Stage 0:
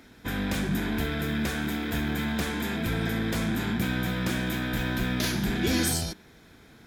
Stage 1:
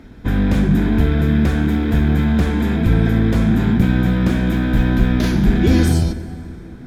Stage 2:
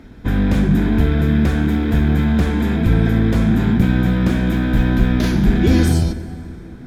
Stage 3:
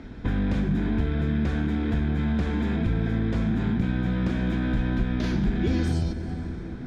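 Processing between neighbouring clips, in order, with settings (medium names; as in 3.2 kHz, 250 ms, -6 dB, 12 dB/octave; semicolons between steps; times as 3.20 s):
tilt EQ -3 dB/octave; reverberation RT60 4.0 s, pre-delay 28 ms, DRR 13.5 dB; trim +6 dB
no audible change
low-pass 5.8 kHz 12 dB/octave; compression 2.5:1, threshold -26 dBFS, peak gain reduction 12 dB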